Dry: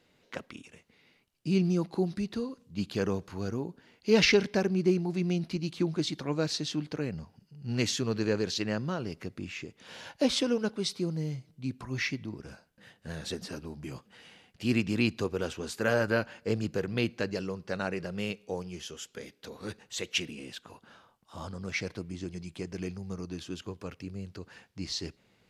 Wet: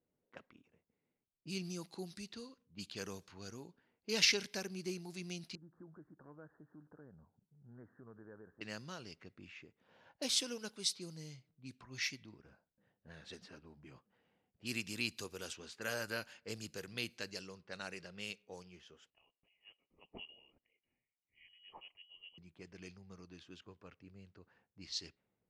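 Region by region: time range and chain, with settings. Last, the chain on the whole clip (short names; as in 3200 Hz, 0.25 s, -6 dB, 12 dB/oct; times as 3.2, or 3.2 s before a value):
5.55–8.61 steep low-pass 1700 Hz 96 dB/oct + compressor 2:1, threshold -42 dBFS
19.1–22.38 fixed phaser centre 430 Hz, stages 6 + inverted band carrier 3100 Hz
whole clip: low-pass opened by the level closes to 560 Hz, open at -27 dBFS; pre-emphasis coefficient 0.9; gain +2.5 dB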